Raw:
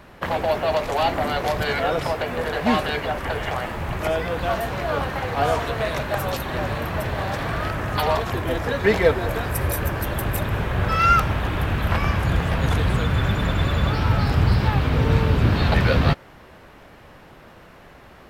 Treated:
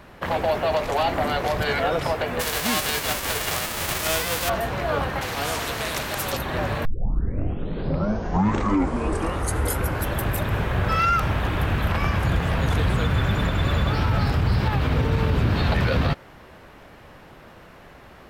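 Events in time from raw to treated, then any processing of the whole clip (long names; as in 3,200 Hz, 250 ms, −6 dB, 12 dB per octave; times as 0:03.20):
0:02.39–0:04.48: spectral envelope flattened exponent 0.3
0:05.21–0:06.33: every bin compressed towards the loudest bin 2 to 1
0:06.85: tape start 3.32 s
whole clip: brickwall limiter −12.5 dBFS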